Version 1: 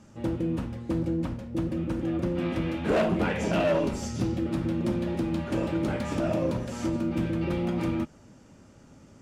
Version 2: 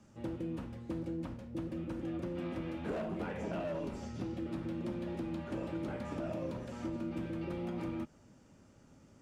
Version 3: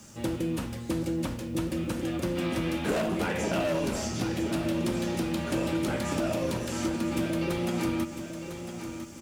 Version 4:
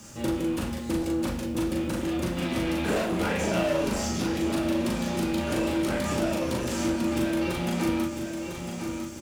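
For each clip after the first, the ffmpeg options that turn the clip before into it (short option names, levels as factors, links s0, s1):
-filter_complex "[0:a]acrossover=split=230|1700|4100[s0][s1][s2][s3];[s0]acompressor=threshold=0.0178:ratio=4[s4];[s1]acompressor=threshold=0.0355:ratio=4[s5];[s2]acompressor=threshold=0.00282:ratio=4[s6];[s3]acompressor=threshold=0.00112:ratio=4[s7];[s4][s5][s6][s7]amix=inputs=4:normalize=0,volume=0.398"
-filter_complex "[0:a]crystalizer=i=5:c=0,asplit=2[s0][s1];[s1]aecho=0:1:1002|2004|3006|4008:0.335|0.131|0.0509|0.0199[s2];[s0][s2]amix=inputs=2:normalize=0,volume=2.66"
-filter_complex "[0:a]asplit=2[s0][s1];[s1]aeval=exprs='0.0224*(abs(mod(val(0)/0.0224+3,4)-2)-1)':c=same,volume=0.376[s2];[s0][s2]amix=inputs=2:normalize=0,asplit=2[s3][s4];[s4]adelay=39,volume=0.75[s5];[s3][s5]amix=inputs=2:normalize=0"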